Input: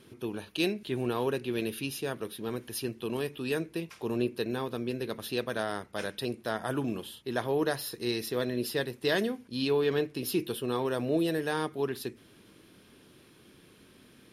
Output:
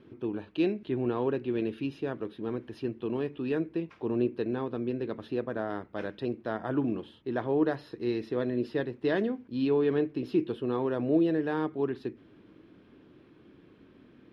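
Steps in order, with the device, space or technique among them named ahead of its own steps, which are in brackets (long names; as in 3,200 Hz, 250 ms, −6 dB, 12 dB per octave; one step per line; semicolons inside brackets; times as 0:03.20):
phone in a pocket (low-pass filter 3,500 Hz 12 dB per octave; parametric band 300 Hz +6 dB 0.46 octaves; high-shelf EQ 2,500 Hz −11.5 dB)
0:05.26–0:05.70: dynamic equaliser 3,500 Hz, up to −7 dB, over −55 dBFS, Q 0.88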